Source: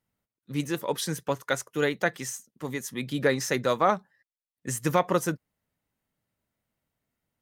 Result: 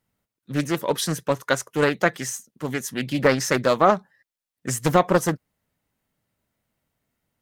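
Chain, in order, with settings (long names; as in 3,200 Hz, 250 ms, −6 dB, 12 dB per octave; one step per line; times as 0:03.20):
highs frequency-modulated by the lows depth 0.52 ms
level +5.5 dB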